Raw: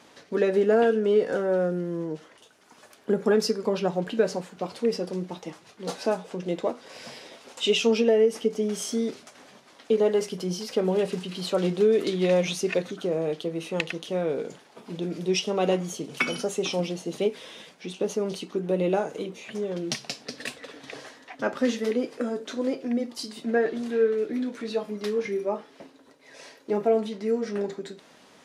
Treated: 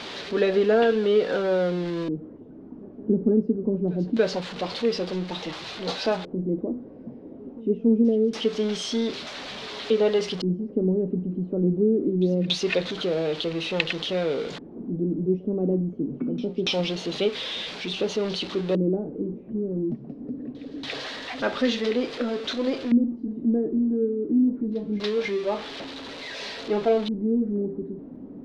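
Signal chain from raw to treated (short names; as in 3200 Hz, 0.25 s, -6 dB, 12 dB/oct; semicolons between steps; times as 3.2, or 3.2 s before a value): zero-crossing step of -34 dBFS; LFO low-pass square 0.24 Hz 280–3900 Hz; pre-echo 0.284 s -23 dB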